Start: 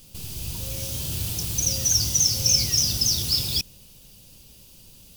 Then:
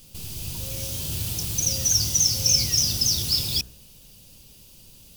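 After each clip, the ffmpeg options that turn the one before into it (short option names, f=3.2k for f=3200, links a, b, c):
-af "bandreject=f=61.9:t=h:w=4,bandreject=f=123.8:t=h:w=4,bandreject=f=185.7:t=h:w=4,bandreject=f=247.6:t=h:w=4,bandreject=f=309.5:t=h:w=4,bandreject=f=371.4:t=h:w=4,bandreject=f=433.3:t=h:w=4,bandreject=f=495.2:t=h:w=4,bandreject=f=557.1:t=h:w=4,bandreject=f=619:t=h:w=4,bandreject=f=680.9:t=h:w=4,bandreject=f=742.8:t=h:w=4,bandreject=f=804.7:t=h:w=4,bandreject=f=866.6:t=h:w=4,bandreject=f=928.5:t=h:w=4,bandreject=f=990.4:t=h:w=4,bandreject=f=1.0523k:t=h:w=4,bandreject=f=1.1142k:t=h:w=4,bandreject=f=1.1761k:t=h:w=4,bandreject=f=1.238k:t=h:w=4,bandreject=f=1.2999k:t=h:w=4,bandreject=f=1.3618k:t=h:w=4,bandreject=f=1.4237k:t=h:w=4,bandreject=f=1.4856k:t=h:w=4,bandreject=f=1.5475k:t=h:w=4,bandreject=f=1.6094k:t=h:w=4,bandreject=f=1.6713k:t=h:w=4,bandreject=f=1.7332k:t=h:w=4,bandreject=f=1.7951k:t=h:w=4"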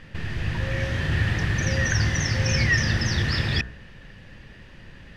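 -af "lowpass=f=1.8k:t=q:w=14,volume=8.5dB"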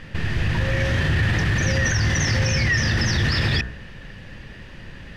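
-af "alimiter=limit=-18.5dB:level=0:latency=1:release=15,volume=6dB"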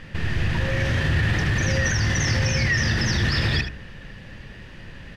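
-af "aecho=1:1:77:0.299,volume=-1.5dB"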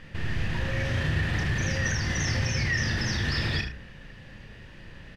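-filter_complex "[0:a]asplit=2[a][b];[b]adelay=33,volume=-7dB[c];[a][c]amix=inputs=2:normalize=0,volume=-6dB"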